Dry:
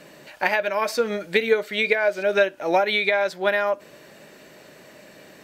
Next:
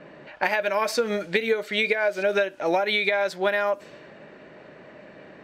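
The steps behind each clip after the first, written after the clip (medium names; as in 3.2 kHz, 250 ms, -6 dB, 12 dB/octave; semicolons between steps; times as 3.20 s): compression, threshold -21 dBFS, peak gain reduction 8 dB; level-controlled noise filter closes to 1.7 kHz, open at -23.5 dBFS; trim +2 dB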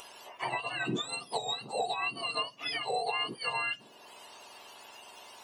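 spectrum inverted on a logarithmic axis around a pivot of 1.3 kHz; upward compressor, threshold -34 dBFS; trim -7.5 dB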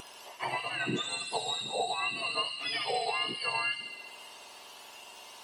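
feedback echo behind a high-pass 69 ms, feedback 77%, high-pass 2.7 kHz, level -3.5 dB; wow and flutter 18 cents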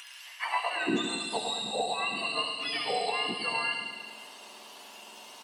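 high-pass sweep 1.9 kHz -> 200 Hz, 0.36–1.00 s; on a send: feedback delay 107 ms, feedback 60%, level -8 dB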